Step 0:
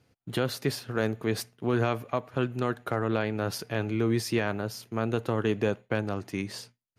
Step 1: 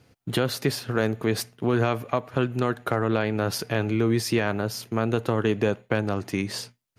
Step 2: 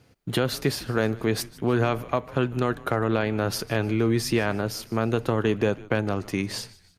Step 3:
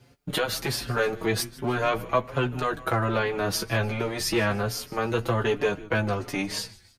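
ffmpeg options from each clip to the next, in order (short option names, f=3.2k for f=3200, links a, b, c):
-af "acompressor=threshold=-34dB:ratio=1.5,volume=8dB"
-filter_complex "[0:a]asplit=4[a][b][c][d];[b]adelay=153,afreqshift=-93,volume=-20.5dB[e];[c]adelay=306,afreqshift=-186,volume=-27.4dB[f];[d]adelay=459,afreqshift=-279,volume=-34.4dB[g];[a][e][f][g]amix=inputs=4:normalize=0"
-filter_complex "[0:a]acrossover=split=470[a][b];[a]asoftclip=type=hard:threshold=-27dB[c];[b]asplit=2[d][e];[e]adelay=14,volume=-6dB[f];[d][f]amix=inputs=2:normalize=0[g];[c][g]amix=inputs=2:normalize=0,asplit=2[h][i];[i]adelay=5.4,afreqshift=1.3[j];[h][j]amix=inputs=2:normalize=1,volume=4dB"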